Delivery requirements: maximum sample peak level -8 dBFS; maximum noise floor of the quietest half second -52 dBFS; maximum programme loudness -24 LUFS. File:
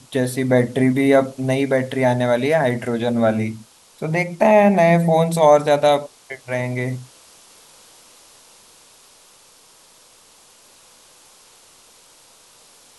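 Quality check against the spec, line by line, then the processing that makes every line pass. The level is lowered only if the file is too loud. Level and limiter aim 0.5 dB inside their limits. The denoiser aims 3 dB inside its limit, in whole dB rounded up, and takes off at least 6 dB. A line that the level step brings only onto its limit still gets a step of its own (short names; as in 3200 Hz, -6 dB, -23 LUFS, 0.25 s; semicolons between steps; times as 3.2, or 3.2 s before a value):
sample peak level -2.5 dBFS: fail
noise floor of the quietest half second -50 dBFS: fail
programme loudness -17.5 LUFS: fail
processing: gain -7 dB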